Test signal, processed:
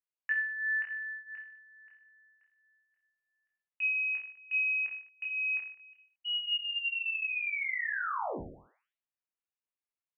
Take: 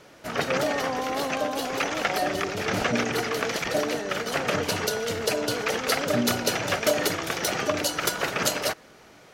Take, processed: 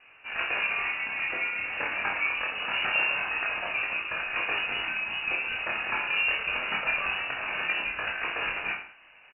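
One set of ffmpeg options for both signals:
-filter_complex "[0:a]flanger=delay=19:depth=3.2:speed=0.24,lowpass=f=2.6k:t=q:w=0.5098,lowpass=f=2.6k:t=q:w=0.6013,lowpass=f=2.6k:t=q:w=0.9,lowpass=f=2.6k:t=q:w=2.563,afreqshift=-3000,asplit=2[a][b];[b]aecho=0:1:30|64.5|104.2|149.8|202.3:0.631|0.398|0.251|0.158|0.1[c];[a][c]amix=inputs=2:normalize=0,volume=-2dB"

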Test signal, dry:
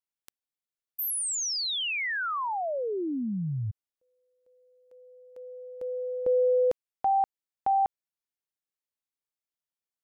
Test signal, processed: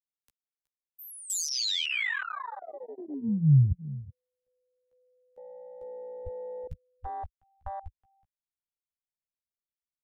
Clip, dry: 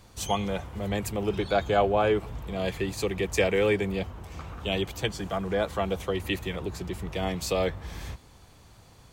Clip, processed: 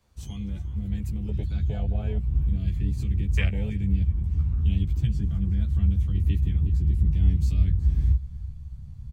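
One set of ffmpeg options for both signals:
-filter_complex "[0:a]asplit=2[a][b];[b]adelay=14,volume=-3dB[c];[a][c]amix=inputs=2:normalize=0,acrossover=split=180|1700[d][e][f];[e]acompressor=threshold=-35dB:ratio=8:attack=1.1:release=279:knee=2.83:detection=peak[g];[d][g][f]amix=inputs=3:normalize=0,aecho=1:1:371:0.126,asubboost=boost=8:cutoff=140,afwtdn=0.0355"

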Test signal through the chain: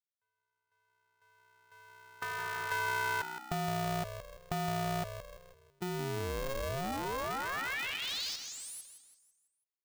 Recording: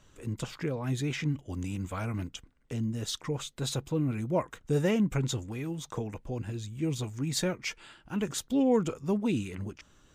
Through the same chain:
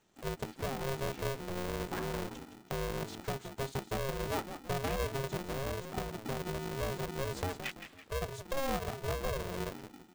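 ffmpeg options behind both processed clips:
-filter_complex "[0:a]afwtdn=0.02,highpass=f=40:p=1,acompressor=threshold=-44dB:ratio=3,asplit=2[a][b];[b]asplit=5[c][d][e][f][g];[c]adelay=166,afreqshift=-62,volume=-9.5dB[h];[d]adelay=332,afreqshift=-124,volume=-16.4dB[i];[e]adelay=498,afreqshift=-186,volume=-23.4dB[j];[f]adelay=664,afreqshift=-248,volume=-30.3dB[k];[g]adelay=830,afreqshift=-310,volume=-37.2dB[l];[h][i][j][k][l]amix=inputs=5:normalize=0[m];[a][m]amix=inputs=2:normalize=0,aeval=exprs='val(0)*sgn(sin(2*PI*270*n/s))':c=same,volume=6.5dB"

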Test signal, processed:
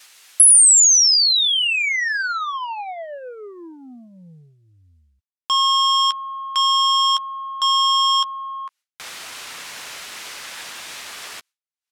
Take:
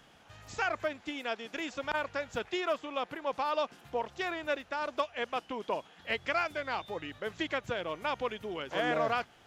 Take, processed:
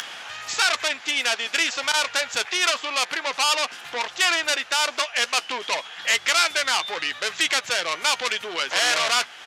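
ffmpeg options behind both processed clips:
-filter_complex "[0:a]apsyclip=29.5dB,lowpass=1.7k,asoftclip=type=tanh:threshold=-5.5dB,acompressor=mode=upward:threshold=-18dB:ratio=2.5,aderivative,crystalizer=i=5.5:c=0,asplit=2[a][b];[b]adelay=12,volume=-12.5dB[c];[a][c]amix=inputs=2:normalize=0,agate=range=-33dB:threshold=-44dB:ratio=3:detection=peak"

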